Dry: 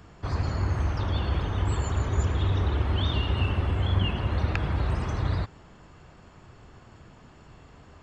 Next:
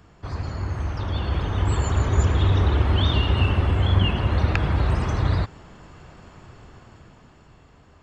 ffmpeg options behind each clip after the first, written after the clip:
-af "dynaudnorm=f=260:g=11:m=2.66,volume=0.794"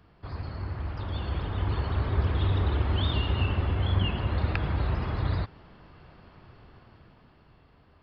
-af "aresample=11025,aresample=44100,volume=0.473"

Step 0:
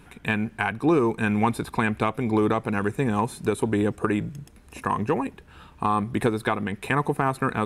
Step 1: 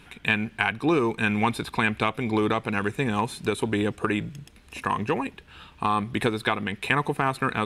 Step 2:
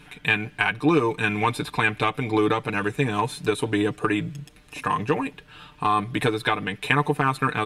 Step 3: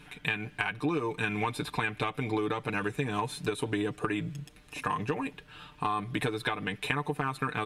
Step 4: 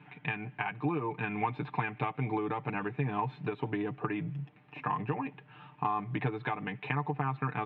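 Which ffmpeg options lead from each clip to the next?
-af "equalizer=f=3200:t=o:w=1.7:g=10,volume=0.75"
-af "aecho=1:1:6.7:0.73"
-af "acompressor=threshold=0.0708:ratio=6,volume=0.668"
-af "highpass=f=120:w=0.5412,highpass=f=120:w=1.3066,equalizer=f=130:t=q:w=4:g=9,equalizer=f=510:t=q:w=4:g=-5,equalizer=f=820:t=q:w=4:g=7,equalizer=f=1500:t=q:w=4:g=-4,lowpass=f=2500:w=0.5412,lowpass=f=2500:w=1.3066,volume=0.75"

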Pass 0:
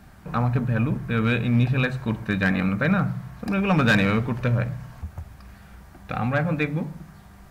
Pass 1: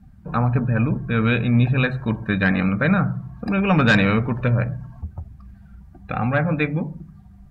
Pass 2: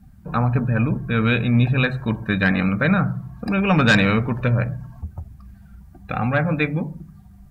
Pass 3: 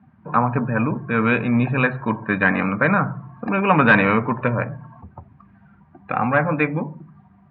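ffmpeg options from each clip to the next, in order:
-af "afftdn=nr=19:nf=-42,volume=1.41"
-af "crystalizer=i=1.5:c=0"
-af "highpass=f=120:w=0.5412,highpass=f=120:w=1.3066,equalizer=f=120:t=q:w=4:g=-5,equalizer=f=180:t=q:w=4:g=-7,equalizer=f=1000:t=q:w=4:g=9,lowpass=f=2500:w=0.5412,lowpass=f=2500:w=1.3066,volume=1.33"

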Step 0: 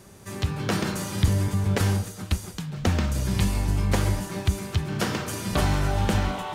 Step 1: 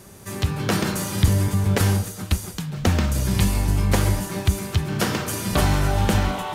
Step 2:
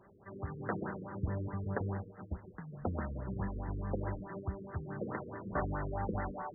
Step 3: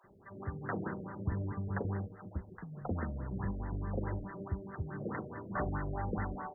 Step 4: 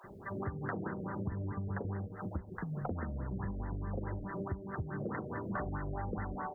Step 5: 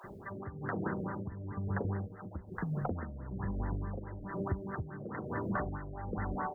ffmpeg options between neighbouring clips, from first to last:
-af "equalizer=f=13000:w=0.86:g=5.5,volume=1.5"
-af "lowshelf=f=310:g=-10.5,afftfilt=real='re*lt(b*sr/1024,500*pow(2100/500,0.5+0.5*sin(2*PI*4.7*pts/sr)))':imag='im*lt(b*sr/1024,500*pow(2100/500,0.5+0.5*sin(2*PI*4.7*pts/sr)))':win_size=1024:overlap=0.75,volume=0.355"
-filter_complex "[0:a]acrossover=split=630[s0][s1];[s0]adelay=40[s2];[s2][s1]amix=inputs=2:normalize=0,volume=1.12"
-af "acompressor=threshold=0.00501:ratio=6,volume=3.35"
-af "tremolo=f=1.1:d=0.66,volume=1.58"

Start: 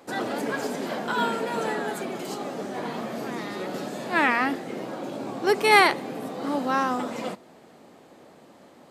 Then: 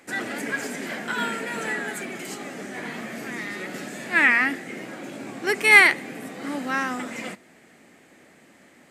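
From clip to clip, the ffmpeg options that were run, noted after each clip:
-af "equalizer=f=125:t=o:w=1:g=-3,equalizer=f=500:t=o:w=1:g=-5,equalizer=f=1000:t=o:w=1:g=-8,equalizer=f=2000:t=o:w=1:g=11,equalizer=f=4000:t=o:w=1:g=-5,equalizer=f=8000:t=o:w=1:g=6"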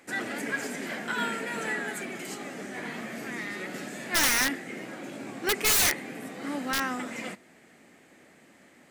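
-af "aeval=exprs='(mod(5.31*val(0)+1,2)-1)/5.31':c=same,volume=0.708"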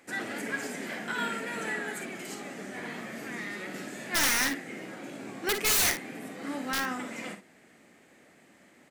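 -af "aecho=1:1:47|57:0.266|0.282,volume=0.75"

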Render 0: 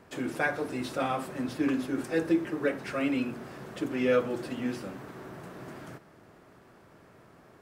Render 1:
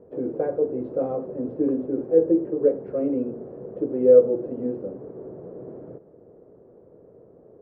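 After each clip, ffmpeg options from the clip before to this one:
-af "lowpass=f=480:t=q:w=4.9"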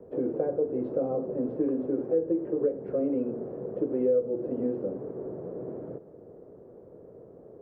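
-filter_complex "[0:a]acrossover=split=110|520|1100[s0][s1][s2][s3];[s0]acompressor=threshold=0.00126:ratio=4[s4];[s1]acompressor=threshold=0.0355:ratio=4[s5];[s2]acompressor=threshold=0.0158:ratio=4[s6];[s3]acompressor=threshold=0.001:ratio=4[s7];[s4][s5][s6][s7]amix=inputs=4:normalize=0,volume=1.19"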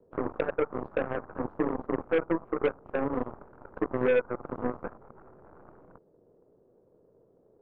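-af "aeval=exprs='0.178*(cos(1*acos(clip(val(0)/0.178,-1,1)))-cos(1*PI/2))+0.01*(cos(6*acos(clip(val(0)/0.178,-1,1)))-cos(6*PI/2))+0.0316*(cos(7*acos(clip(val(0)/0.178,-1,1)))-cos(7*PI/2))':c=same,volume=0.891"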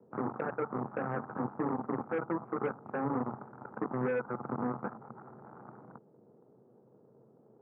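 -af "alimiter=level_in=1.12:limit=0.0631:level=0:latency=1:release=13,volume=0.891,highpass=f=110:w=0.5412,highpass=f=110:w=1.3066,equalizer=f=130:t=q:w=4:g=9,equalizer=f=220:t=q:w=4:g=9,equalizer=f=560:t=q:w=4:g=-3,equalizer=f=830:t=q:w=4:g=7,equalizer=f=1300:t=q:w=4:g=5,lowpass=f=2200:w=0.5412,lowpass=f=2200:w=1.3066"

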